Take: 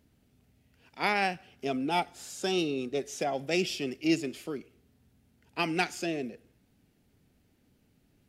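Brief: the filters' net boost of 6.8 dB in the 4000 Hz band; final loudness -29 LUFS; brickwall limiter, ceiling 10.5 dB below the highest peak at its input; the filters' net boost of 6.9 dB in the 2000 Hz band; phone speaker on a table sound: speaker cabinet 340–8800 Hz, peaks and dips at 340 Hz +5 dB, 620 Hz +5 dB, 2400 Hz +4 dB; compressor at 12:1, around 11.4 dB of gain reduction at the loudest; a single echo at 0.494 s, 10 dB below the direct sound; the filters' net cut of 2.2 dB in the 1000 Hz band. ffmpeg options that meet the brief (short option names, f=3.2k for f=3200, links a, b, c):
-af "equalizer=f=1k:t=o:g=-6.5,equalizer=f=2k:t=o:g=4,equalizer=f=4k:t=o:g=7.5,acompressor=threshold=-32dB:ratio=12,alimiter=level_in=5dB:limit=-24dB:level=0:latency=1,volume=-5dB,highpass=f=340:w=0.5412,highpass=f=340:w=1.3066,equalizer=f=340:t=q:w=4:g=5,equalizer=f=620:t=q:w=4:g=5,equalizer=f=2.4k:t=q:w=4:g=4,lowpass=f=8.8k:w=0.5412,lowpass=f=8.8k:w=1.3066,aecho=1:1:494:0.316,volume=10dB"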